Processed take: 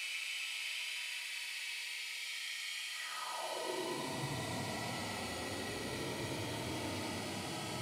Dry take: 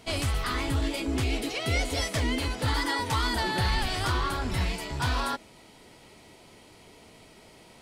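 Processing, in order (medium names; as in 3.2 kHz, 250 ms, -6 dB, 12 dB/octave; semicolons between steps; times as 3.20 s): Paulstretch 37×, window 0.05 s, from 5.47 s; high-pass sweep 2.4 kHz -> 110 Hz, 2.90–4.29 s; trim +11.5 dB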